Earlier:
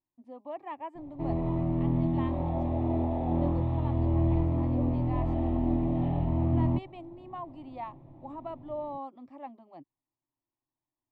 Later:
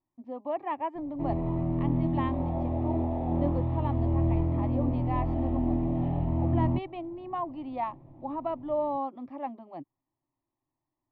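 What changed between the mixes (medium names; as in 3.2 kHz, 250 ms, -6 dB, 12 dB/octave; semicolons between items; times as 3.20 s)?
speech +8.0 dB; master: add distance through air 190 m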